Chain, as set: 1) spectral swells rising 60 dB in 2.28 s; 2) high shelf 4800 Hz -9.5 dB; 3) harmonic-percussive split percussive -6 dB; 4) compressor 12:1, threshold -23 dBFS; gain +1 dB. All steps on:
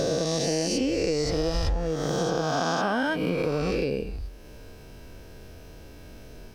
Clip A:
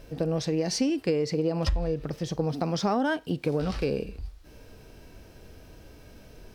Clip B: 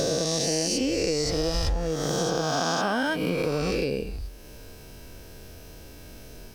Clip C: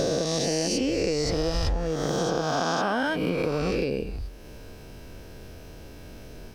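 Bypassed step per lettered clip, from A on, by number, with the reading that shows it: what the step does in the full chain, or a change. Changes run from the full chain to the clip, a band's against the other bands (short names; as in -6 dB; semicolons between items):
1, 125 Hz band +4.5 dB; 2, 8 kHz band +5.0 dB; 3, momentary loudness spread change +16 LU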